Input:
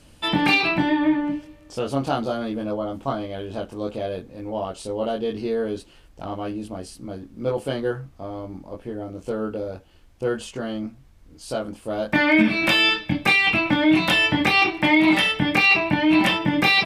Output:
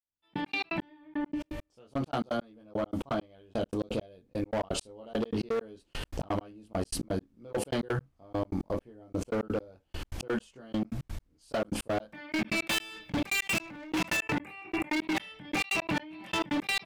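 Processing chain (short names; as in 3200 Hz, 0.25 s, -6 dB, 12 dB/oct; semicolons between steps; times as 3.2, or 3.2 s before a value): opening faded in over 5.47 s; 3.53–4.42 dynamic EQ 1200 Hz, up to -6 dB, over -45 dBFS, Q 0.91; 13.57–14.94 spectral gain 2900–6600 Hz -15 dB; limiter -18 dBFS, peak gain reduction 11 dB; 12.68–14.17 sample leveller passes 2; step gate "....x.x.x" 169 bpm -60 dB; hard clip -27.5 dBFS, distortion -9 dB; fast leveller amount 70%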